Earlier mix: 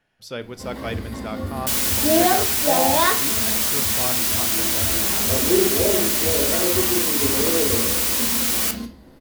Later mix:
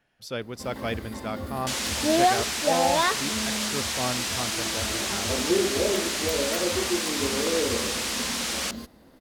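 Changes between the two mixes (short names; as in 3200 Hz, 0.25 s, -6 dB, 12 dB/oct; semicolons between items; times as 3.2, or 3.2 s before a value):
second sound: add LPF 6500 Hz 12 dB/oct; reverb: off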